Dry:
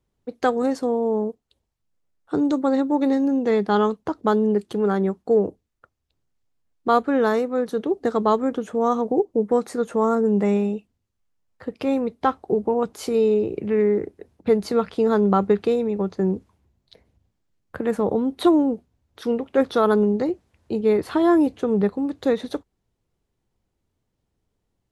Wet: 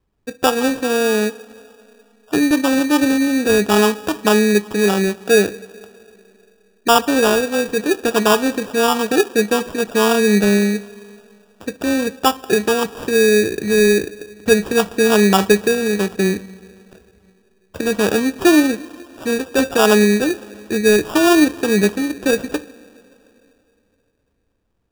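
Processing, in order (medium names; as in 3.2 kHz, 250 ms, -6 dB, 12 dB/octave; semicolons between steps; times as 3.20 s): two-slope reverb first 0.26 s, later 3 s, from -18 dB, DRR 10.5 dB; sample-and-hold 21×; trim +4.5 dB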